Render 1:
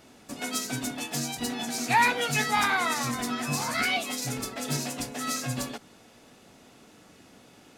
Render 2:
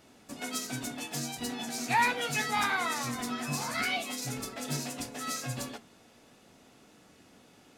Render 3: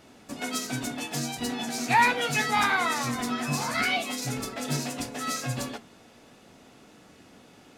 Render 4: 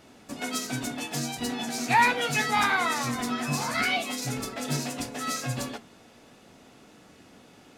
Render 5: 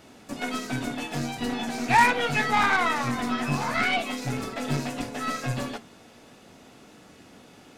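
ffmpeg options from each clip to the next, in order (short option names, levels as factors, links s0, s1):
-af "flanger=delay=9.8:depth=5.4:regen=-74:speed=0.37:shape=sinusoidal"
-af "highshelf=f=5700:g=-4.5,volume=1.88"
-af anull
-filter_complex "[0:a]acrossover=split=3200[s0][s1];[s1]acompressor=threshold=0.00562:ratio=4:attack=1:release=60[s2];[s0][s2]amix=inputs=2:normalize=0,aeval=exprs='0.299*(cos(1*acos(clip(val(0)/0.299,-1,1)))-cos(1*PI/2))+0.0335*(cos(6*acos(clip(val(0)/0.299,-1,1)))-cos(6*PI/2))+0.0376*(cos(8*acos(clip(val(0)/0.299,-1,1)))-cos(8*PI/2))':c=same,volume=1.33"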